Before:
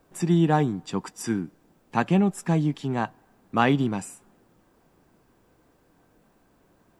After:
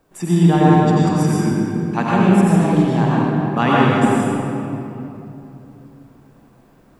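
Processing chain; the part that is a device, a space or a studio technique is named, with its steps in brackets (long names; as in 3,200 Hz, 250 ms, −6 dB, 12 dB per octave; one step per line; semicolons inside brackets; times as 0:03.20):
tunnel (flutter between parallel walls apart 8 metres, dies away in 0.21 s; convolution reverb RT60 3.0 s, pre-delay 79 ms, DRR −7 dB)
level +1 dB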